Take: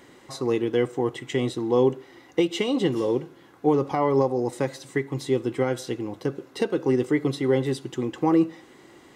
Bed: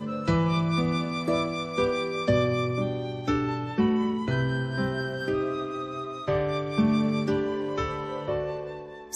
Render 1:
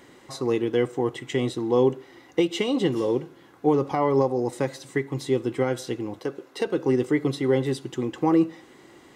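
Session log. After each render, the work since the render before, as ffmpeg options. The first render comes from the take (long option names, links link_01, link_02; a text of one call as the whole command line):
ffmpeg -i in.wav -filter_complex "[0:a]asettb=1/sr,asplit=3[link_01][link_02][link_03];[link_01]atrim=end=6.194[link_04];[link_02]atrim=start=6.19:end=6.67,asetpts=PTS-STARTPTS,afade=type=in:duration=0.004:curve=qsin,afade=type=out:start_time=0.476:duration=0.004:curve=qsin,bass=frequency=250:gain=-11,treble=frequency=4000:gain=-1[link_05];[link_03]atrim=start=6.666[link_06];[link_04][link_05]acrossfade=duration=0.004:curve1=hsin:curve2=qsin[link_07];[link_07][link_06]acrossfade=duration=0.004:curve1=qsin:curve2=hsin" out.wav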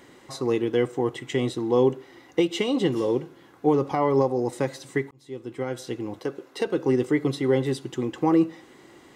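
ffmpeg -i in.wav -filter_complex "[0:a]asplit=2[link_01][link_02];[link_01]atrim=end=5.11,asetpts=PTS-STARTPTS,afade=type=out:start_time=5.106:duration=0.004:curve=hsin[link_03];[link_02]atrim=start=5.11,asetpts=PTS-STARTPTS,afade=type=in:duration=1.02[link_04];[link_03][link_04]concat=n=2:v=0:a=1" out.wav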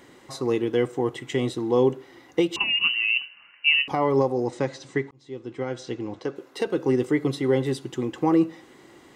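ffmpeg -i in.wav -filter_complex "[0:a]asettb=1/sr,asplit=3[link_01][link_02][link_03];[link_01]atrim=end=2.564[link_04];[link_02]atrim=start=2.56:end=3.88,asetpts=PTS-STARTPTS,afade=type=in:duration=0.004:curve=qsin,afade=type=out:start_time=1.316:duration=0.004:curve=qsin,lowpass=frequency=2600:width_type=q:width=0.5098,lowpass=frequency=2600:width_type=q:width=0.6013,lowpass=frequency=2600:width_type=q:width=0.9,lowpass=frequency=2600:width_type=q:width=2.563,afreqshift=-3100[link_05];[link_03]atrim=start=3.876[link_06];[link_04][link_05]acrossfade=duration=0.004:curve1=hsin:curve2=qsin[link_07];[link_07][link_06]acrossfade=duration=0.004:curve1=qsin:curve2=hsin,asettb=1/sr,asplit=3[link_08][link_09][link_10];[link_08]atrim=end=4.454[link_11];[link_09]atrim=start=4.45:end=6.36,asetpts=PTS-STARTPTS,afade=type=in:duration=0.004:curve=qsin,afade=type=out:start_time=1.906:duration=0.004:curve=qsin,lowpass=frequency=7000:width=0.5412,lowpass=frequency=7000:width=1.3066[link_12];[link_10]atrim=start=6.356[link_13];[link_11][link_12]acrossfade=duration=0.004:curve1=hsin:curve2=qsin[link_14];[link_14][link_13]acrossfade=duration=0.004:curve1=qsin:curve2=hsin" out.wav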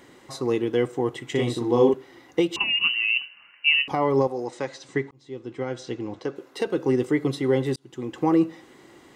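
ffmpeg -i in.wav -filter_complex "[0:a]asettb=1/sr,asplit=3[link_01][link_02][link_03];[link_01]atrim=end=1.314[link_04];[link_02]atrim=start=1.31:end=1.94,asetpts=PTS-STARTPTS,afade=type=in:duration=0.004:curve=qsin,afade=type=out:start_time=0.626:duration=0.004:curve=qsin,asplit=2[link_05][link_06];[link_06]adelay=42,volume=-2dB[link_07];[link_05][link_07]amix=inputs=2:normalize=0,atrim=end_sample=27783[link_08];[link_03]atrim=start=1.936[link_09];[link_04][link_08]acrossfade=duration=0.004:curve1=hsin:curve2=qsin[link_10];[link_10][link_09]acrossfade=duration=0.004:curve1=qsin:curve2=hsin,asettb=1/sr,asplit=3[link_11][link_12][link_13];[link_11]atrim=end=4.274[link_14];[link_12]atrim=start=4.27:end=4.89,asetpts=PTS-STARTPTS,afade=type=in:duration=0.004:curve=qsin,afade=type=out:start_time=0.616:duration=0.004:curve=qsin,lowshelf=frequency=330:gain=-11.5[link_15];[link_13]atrim=start=4.886[link_16];[link_14][link_15]acrossfade=duration=0.004:curve1=hsin:curve2=qsin[link_17];[link_17][link_16]acrossfade=duration=0.004:curve1=qsin:curve2=hsin,asplit=2[link_18][link_19];[link_18]atrim=end=7.76,asetpts=PTS-STARTPTS,afade=type=out:start_time=7.756:duration=0.004:curve=hsin[link_20];[link_19]atrim=start=7.76,asetpts=PTS-STARTPTS,afade=type=in:duration=0.45[link_21];[link_20][link_21]concat=n=2:v=0:a=1" out.wav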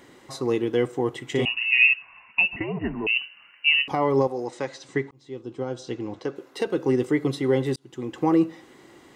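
ffmpeg -i in.wav -filter_complex "[0:a]asettb=1/sr,asplit=3[link_01][link_02][link_03];[link_01]atrim=end=1.454[link_04];[link_02]atrim=start=1.45:end=3.07,asetpts=PTS-STARTPTS,afade=type=in:duration=0.004:curve=qsin,afade=type=out:start_time=1.616:duration=0.004:curve=qsin,lowpass=frequency=2600:width_type=q:width=0.5098,lowpass=frequency=2600:width_type=q:width=0.6013,lowpass=frequency=2600:width_type=q:width=0.9,lowpass=frequency=2600:width_type=q:width=2.563,afreqshift=-3000[link_05];[link_03]atrim=start=3.066[link_06];[link_04][link_05]acrossfade=duration=0.004:curve1=hsin:curve2=qsin[link_07];[link_07][link_06]acrossfade=duration=0.004:curve1=qsin:curve2=hsin,asettb=1/sr,asplit=3[link_08][link_09][link_10];[link_08]atrim=end=5.414[link_11];[link_09]atrim=start=5.41:end=5.89,asetpts=PTS-STARTPTS,afade=type=in:duration=0.004:curve=qsin,afade=type=out:start_time=0.476:duration=0.004:curve=qsin,equalizer=frequency=2000:width_type=o:width=0.6:gain=-13[link_12];[link_10]atrim=start=5.886[link_13];[link_11][link_12]acrossfade=duration=0.004:curve1=hsin:curve2=qsin[link_14];[link_14][link_13]acrossfade=duration=0.004:curve1=qsin:curve2=hsin" out.wav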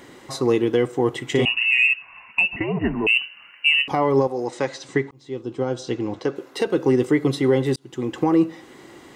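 ffmpeg -i in.wav -af "alimiter=limit=-14.5dB:level=0:latency=1:release=377,acontrast=50" out.wav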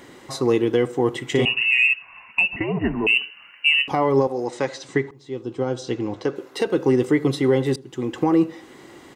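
ffmpeg -i in.wav -filter_complex "[0:a]asplit=2[link_01][link_02];[link_02]adelay=78,lowpass=frequency=910:poles=1,volume=-20.5dB,asplit=2[link_03][link_04];[link_04]adelay=78,lowpass=frequency=910:poles=1,volume=0.39,asplit=2[link_05][link_06];[link_06]adelay=78,lowpass=frequency=910:poles=1,volume=0.39[link_07];[link_01][link_03][link_05][link_07]amix=inputs=4:normalize=0" out.wav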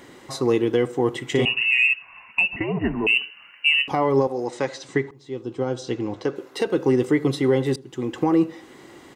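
ffmpeg -i in.wav -af "volume=-1dB" out.wav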